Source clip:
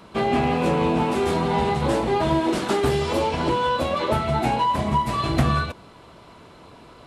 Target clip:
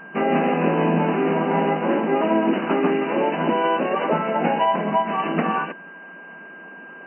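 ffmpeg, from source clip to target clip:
-filter_complex "[0:a]asplit=3[a][b][c];[b]asetrate=29433,aresample=44100,atempo=1.49831,volume=-4dB[d];[c]asetrate=35002,aresample=44100,atempo=1.25992,volume=-8dB[e];[a][d][e]amix=inputs=3:normalize=0,aeval=exprs='val(0)+0.0112*sin(2*PI*1600*n/s)':c=same,afftfilt=real='re*between(b*sr/4096,160,3000)':imag='im*between(b*sr/4096,160,3000)':win_size=4096:overlap=0.75"

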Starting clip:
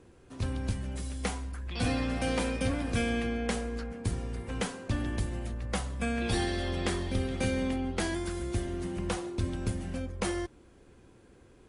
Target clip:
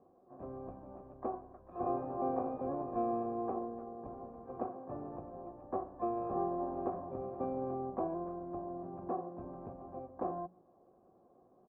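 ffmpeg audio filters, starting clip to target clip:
-filter_complex "[0:a]asplit=3[a][b][c];[a]bandpass=f=730:t=q:w=8,volume=0dB[d];[b]bandpass=f=1.09k:t=q:w=8,volume=-6dB[e];[c]bandpass=f=2.44k:t=q:w=8,volume=-9dB[f];[d][e][f]amix=inputs=3:normalize=0,asplit=3[g][h][i];[h]asetrate=22050,aresample=44100,atempo=2,volume=-4dB[j];[i]asetrate=66075,aresample=44100,atempo=0.66742,volume=-5dB[k];[g][j][k]amix=inputs=3:normalize=0,bandreject=f=60:t=h:w=6,bandreject=f=120:t=h:w=6,bandreject=f=180:t=h:w=6,acrossover=split=950[l][m];[m]acrusher=bits=2:mix=0:aa=0.5[n];[l][n]amix=inputs=2:normalize=0,volume=8dB"

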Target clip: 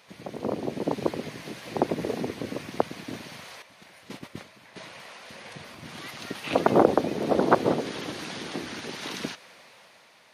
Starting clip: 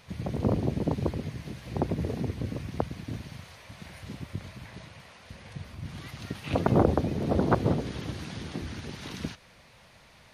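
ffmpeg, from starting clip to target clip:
-filter_complex "[0:a]highpass=310,asettb=1/sr,asplit=3[a][b][c];[a]atrim=end=3.624[d];[b]atrim=start=3.62:end=4.76,asetpts=PTS-STARTPTS,afade=t=in:d=0.004:c=qsin,afade=t=out:st=1.136:d=0.004:c=qsin,agate=range=-10dB:threshold=-46dB:ratio=16:detection=peak[e];[c]atrim=start=4.756[f];[d][e]acrossfade=d=0.004:c1=hsin:c2=qsin[g];[g][f]acrossfade=d=0.004:c1=qsin:c2=hsin,dynaudnorm=f=230:g=7:m=7dB"

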